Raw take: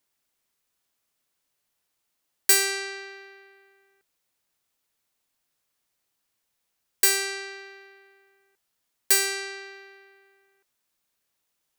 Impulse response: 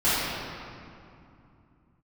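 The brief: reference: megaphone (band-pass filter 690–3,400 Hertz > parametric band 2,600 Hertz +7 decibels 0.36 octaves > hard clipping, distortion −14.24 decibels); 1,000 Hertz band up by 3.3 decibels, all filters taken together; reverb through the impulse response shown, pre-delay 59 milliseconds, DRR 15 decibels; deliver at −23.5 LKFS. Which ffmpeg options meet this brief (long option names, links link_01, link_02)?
-filter_complex "[0:a]equalizer=frequency=1000:width_type=o:gain=6.5,asplit=2[link_01][link_02];[1:a]atrim=start_sample=2205,adelay=59[link_03];[link_02][link_03]afir=irnorm=-1:irlink=0,volume=-32.5dB[link_04];[link_01][link_04]amix=inputs=2:normalize=0,highpass=690,lowpass=3400,equalizer=frequency=2600:width_type=o:width=0.36:gain=7,asoftclip=type=hard:threshold=-21.5dB,volume=6.5dB"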